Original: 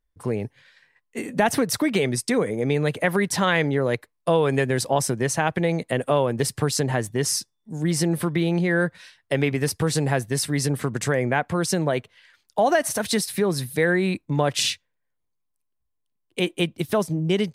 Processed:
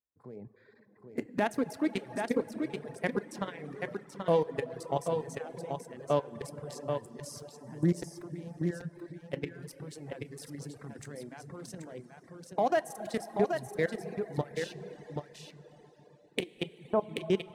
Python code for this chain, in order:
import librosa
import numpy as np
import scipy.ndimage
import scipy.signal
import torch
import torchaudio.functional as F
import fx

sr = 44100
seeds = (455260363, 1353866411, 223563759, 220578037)

y = fx.wiener(x, sr, points=15)
y = fx.recorder_agc(y, sr, target_db=-11.5, rise_db_per_s=7.6, max_gain_db=30)
y = scipy.signal.sosfilt(scipy.signal.butter(2, 150.0, 'highpass', fs=sr, output='sos'), y)
y = fx.level_steps(y, sr, step_db=20)
y = y + 10.0 ** (-5.5 / 20.0) * np.pad(y, (int(782 * sr / 1000.0), 0))[:len(y)]
y = fx.hpss(y, sr, part='harmonic', gain_db=6)
y = fx.lowpass_res(y, sr, hz=940.0, q=2.0, at=(16.63, 17.12))
y = fx.rev_plate(y, sr, seeds[0], rt60_s=4.5, hf_ratio=0.6, predelay_ms=0, drr_db=6.5)
y = fx.dereverb_blind(y, sr, rt60_s=0.9)
y = y * 10.0 ** (-8.5 / 20.0)